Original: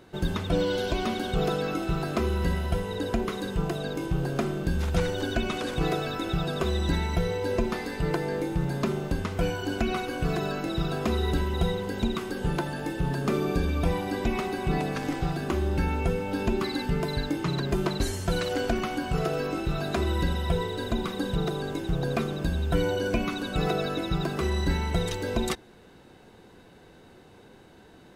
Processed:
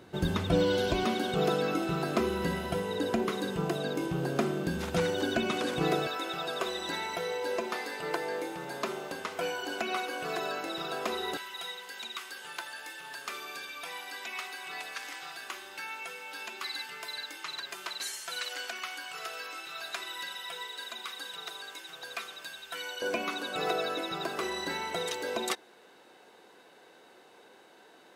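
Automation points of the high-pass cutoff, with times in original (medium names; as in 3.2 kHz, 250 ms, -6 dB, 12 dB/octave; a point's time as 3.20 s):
68 Hz
from 1.04 s 180 Hz
from 6.07 s 540 Hz
from 11.37 s 1.5 kHz
from 23.02 s 480 Hz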